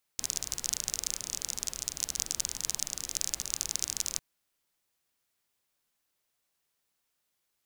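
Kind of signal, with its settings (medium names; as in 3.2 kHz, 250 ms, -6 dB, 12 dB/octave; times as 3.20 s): rain from filtered ticks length 4.00 s, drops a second 33, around 6.3 kHz, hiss -13.5 dB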